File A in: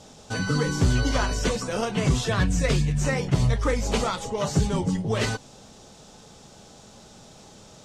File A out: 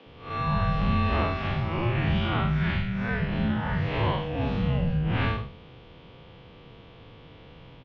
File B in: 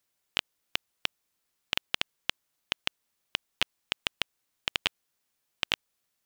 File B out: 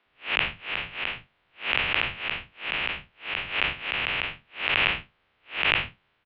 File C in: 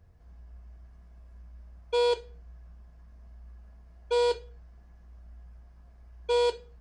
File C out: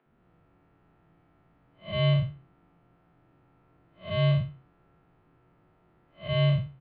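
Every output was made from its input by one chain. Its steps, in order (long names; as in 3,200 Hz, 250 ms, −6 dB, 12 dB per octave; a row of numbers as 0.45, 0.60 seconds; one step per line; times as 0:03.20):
spectrum smeared in time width 151 ms
single-sideband voice off tune −340 Hz 150–3,500 Hz
multiband delay without the direct sound highs, lows 60 ms, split 220 Hz
loudness normalisation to −27 LKFS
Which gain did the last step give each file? +5.0, +19.0, +6.0 decibels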